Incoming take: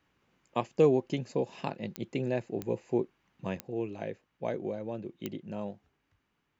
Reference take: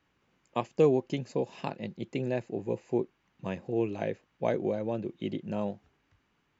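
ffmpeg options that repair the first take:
-af "adeclick=t=4,asetnsamples=n=441:p=0,asendcmd='3.57 volume volume 5dB',volume=0dB"

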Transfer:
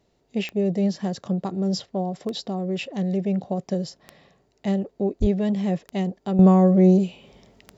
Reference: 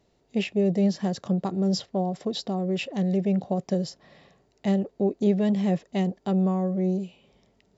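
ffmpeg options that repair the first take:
-filter_complex "[0:a]adeclick=t=4,asplit=3[a][b][c];[a]afade=t=out:st=5.2:d=0.02[d];[b]highpass=f=140:w=0.5412,highpass=f=140:w=1.3066,afade=t=in:st=5.2:d=0.02,afade=t=out:st=5.32:d=0.02[e];[c]afade=t=in:st=5.32:d=0.02[f];[d][e][f]amix=inputs=3:normalize=0,asetnsamples=n=441:p=0,asendcmd='6.39 volume volume -10dB',volume=0dB"

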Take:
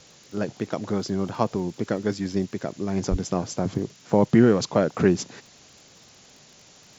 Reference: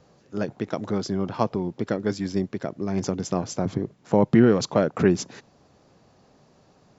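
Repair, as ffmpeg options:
-filter_complex "[0:a]adeclick=t=4,asplit=3[a][b][c];[a]afade=t=out:st=3.1:d=0.02[d];[b]highpass=f=140:w=0.5412,highpass=f=140:w=1.3066,afade=t=in:st=3.1:d=0.02,afade=t=out:st=3.22:d=0.02[e];[c]afade=t=in:st=3.22:d=0.02[f];[d][e][f]amix=inputs=3:normalize=0,afftdn=nr=6:nf=-52"

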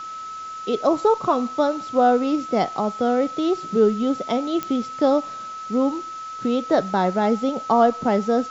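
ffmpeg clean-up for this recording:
-af "adeclick=t=4,bandreject=f=1.3k:w=30,afwtdn=0.0063"

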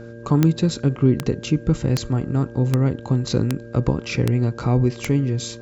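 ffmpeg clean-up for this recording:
-af "adeclick=t=4,bandreject=f=116.2:t=h:w=4,bandreject=f=232.4:t=h:w=4,bandreject=f=348.6:t=h:w=4,bandreject=f=464.8:t=h:w=4,bandreject=f=581:t=h:w=4,bandreject=f=1.6k:w=30"

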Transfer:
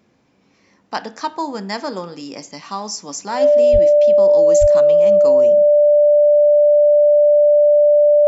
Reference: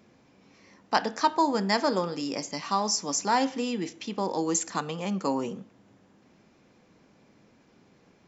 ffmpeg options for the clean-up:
-filter_complex "[0:a]bandreject=f=590:w=30,asplit=3[a][b][c];[a]afade=t=out:st=3.72:d=0.02[d];[b]highpass=f=140:w=0.5412,highpass=f=140:w=1.3066,afade=t=in:st=3.72:d=0.02,afade=t=out:st=3.84:d=0.02[e];[c]afade=t=in:st=3.84:d=0.02[f];[d][e][f]amix=inputs=3:normalize=0,asplit=3[g][h][i];[g]afade=t=out:st=4.6:d=0.02[j];[h]highpass=f=140:w=0.5412,highpass=f=140:w=1.3066,afade=t=in:st=4.6:d=0.02,afade=t=out:st=4.72:d=0.02[k];[i]afade=t=in:st=4.72:d=0.02[l];[j][k][l]amix=inputs=3:normalize=0"

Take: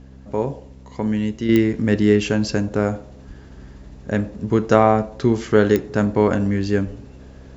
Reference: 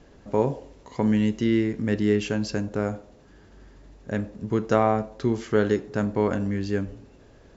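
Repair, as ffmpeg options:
-filter_complex "[0:a]adeclick=t=4,bandreject=f=65.6:t=h:w=4,bandreject=f=131.2:t=h:w=4,bandreject=f=196.8:t=h:w=4,bandreject=f=262.4:t=h:w=4,asplit=3[a][b][c];[a]afade=t=out:st=3.27:d=0.02[d];[b]highpass=f=140:w=0.5412,highpass=f=140:w=1.3066,afade=t=in:st=3.27:d=0.02,afade=t=out:st=3.39:d=0.02[e];[c]afade=t=in:st=3.39:d=0.02[f];[d][e][f]amix=inputs=3:normalize=0,asetnsamples=n=441:p=0,asendcmd='1.49 volume volume -6.5dB',volume=0dB"

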